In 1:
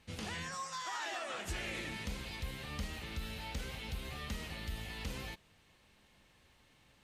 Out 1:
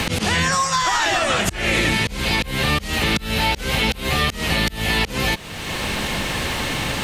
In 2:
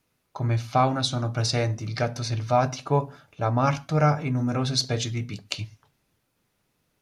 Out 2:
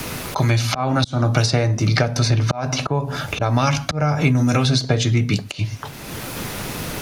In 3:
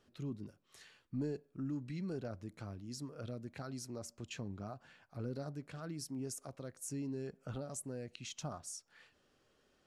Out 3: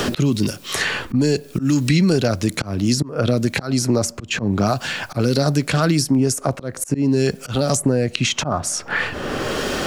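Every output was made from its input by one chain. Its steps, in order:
downward compressor 6 to 1, threshold −27 dBFS
volume swells 371 ms
multiband upward and downward compressor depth 100%
loudness normalisation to −20 LKFS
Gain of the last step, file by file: +25.0, +14.5, +27.5 decibels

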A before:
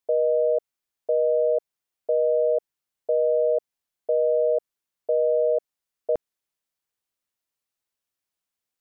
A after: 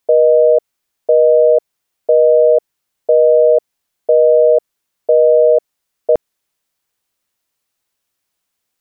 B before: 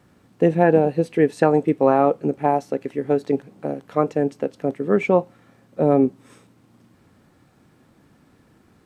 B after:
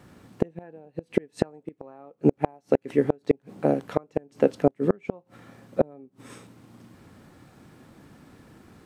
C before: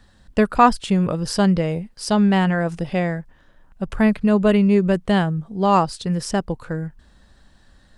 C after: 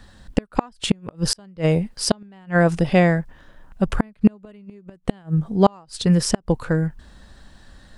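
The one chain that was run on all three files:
gate with flip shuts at −10 dBFS, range −35 dB
normalise the peak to −3 dBFS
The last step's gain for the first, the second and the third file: +12.0, +4.5, +6.0 decibels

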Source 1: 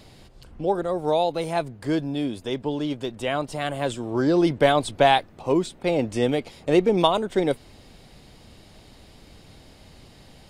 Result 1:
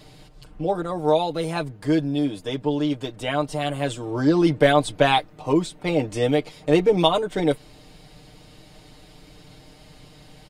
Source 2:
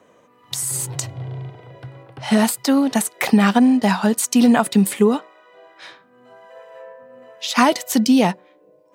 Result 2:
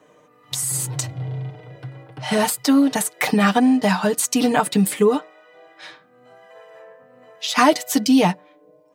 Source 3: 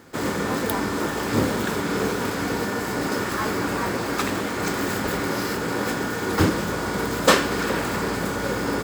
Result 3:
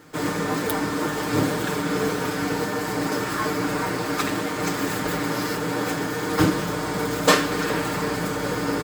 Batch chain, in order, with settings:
comb filter 6.6 ms, depth 75%
normalise the peak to −3 dBFS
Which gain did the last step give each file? −0.5, −1.5, −2.0 decibels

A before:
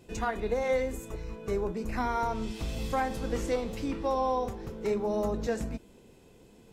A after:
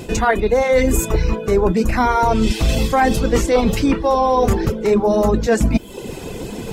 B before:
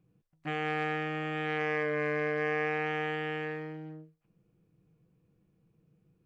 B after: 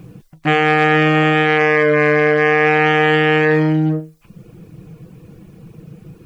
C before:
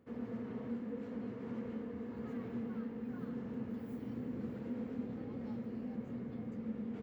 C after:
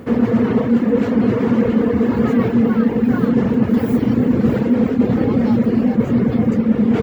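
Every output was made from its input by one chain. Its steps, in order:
reverb reduction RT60 0.67 s
reversed playback
downward compressor 10 to 1, threshold −42 dBFS
reversed playback
normalise the peak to −3 dBFS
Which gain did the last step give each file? +29.5, +31.5, +31.5 decibels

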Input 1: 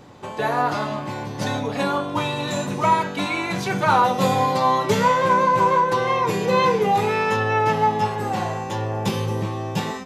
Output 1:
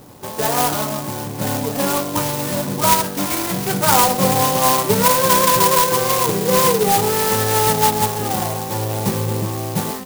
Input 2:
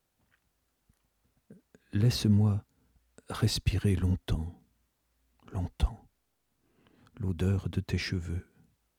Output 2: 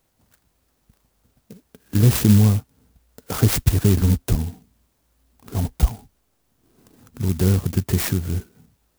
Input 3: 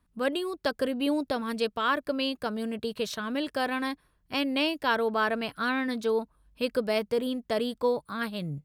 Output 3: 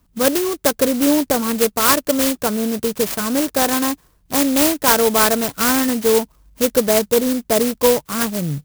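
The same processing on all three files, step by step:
converter with an unsteady clock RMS 0.12 ms
normalise the peak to −3 dBFS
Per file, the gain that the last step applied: +3.0, +10.5, +12.0 decibels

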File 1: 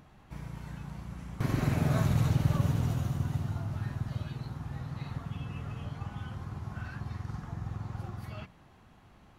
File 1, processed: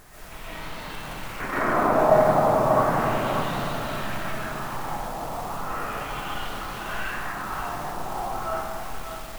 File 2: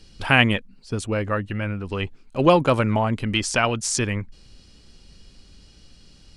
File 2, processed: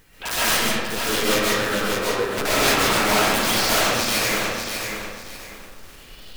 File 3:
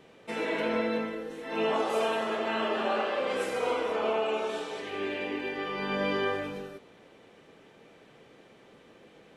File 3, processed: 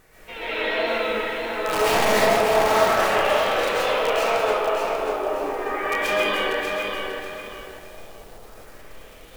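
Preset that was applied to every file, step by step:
high-pass filter 420 Hz 12 dB per octave
background noise brown −54 dBFS
wrap-around overflow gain 13 dB
auto-filter low-pass sine 0.35 Hz 760–4,100 Hz
bit-depth reduction 10 bits, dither triangular
wrap-around overflow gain 19 dB
tape wow and flutter 78 cents
comb and all-pass reverb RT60 1.8 s, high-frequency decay 0.5×, pre-delay 90 ms, DRR −9.5 dB
feedback echo at a low word length 591 ms, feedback 35%, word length 7 bits, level −5.5 dB
normalise the peak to −6 dBFS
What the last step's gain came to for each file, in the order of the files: +4.5, −1.5, −3.5 decibels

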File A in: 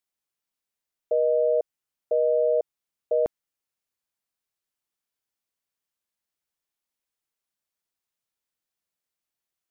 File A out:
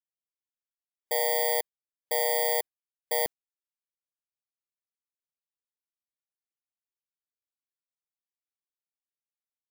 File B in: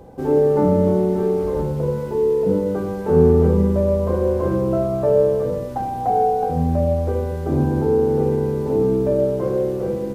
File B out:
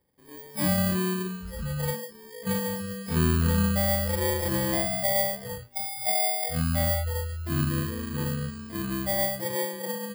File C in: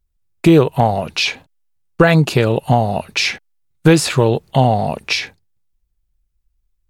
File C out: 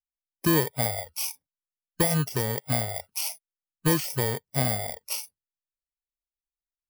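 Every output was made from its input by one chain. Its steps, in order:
samples in bit-reversed order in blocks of 32 samples
noise reduction from a noise print of the clip's start 25 dB
loudness normalisation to −27 LKFS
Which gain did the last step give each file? −4.5, −6.0, −12.5 decibels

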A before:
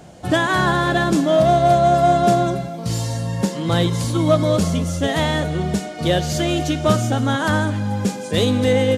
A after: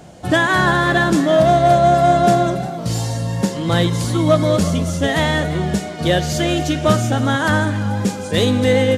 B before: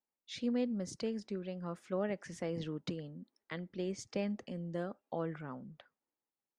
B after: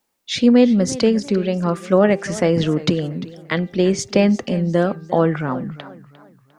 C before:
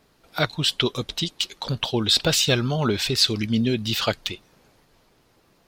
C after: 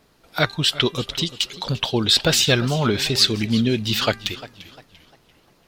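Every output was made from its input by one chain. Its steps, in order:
dynamic equaliser 1,800 Hz, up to +4 dB, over −37 dBFS, Q 3.1
hum removal 395.9 Hz, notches 7
feedback echo with a swinging delay time 347 ms, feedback 37%, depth 139 cents, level −17 dB
normalise the peak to −1.5 dBFS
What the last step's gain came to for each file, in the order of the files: +1.5, +21.5, +2.5 decibels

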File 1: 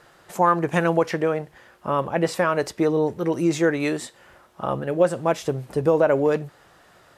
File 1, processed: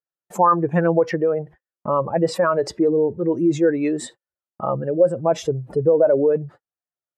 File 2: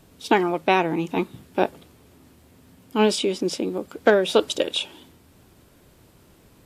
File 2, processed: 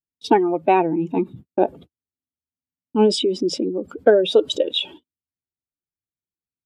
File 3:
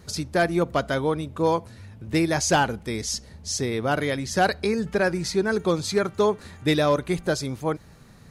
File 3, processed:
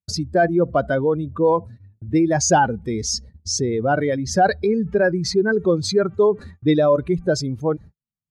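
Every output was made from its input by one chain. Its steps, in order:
expanding power law on the bin magnitudes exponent 1.8
noise gate −41 dBFS, range −52 dB
loudness normalisation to −20 LKFS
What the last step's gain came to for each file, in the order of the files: +3.0, +3.5, +5.0 decibels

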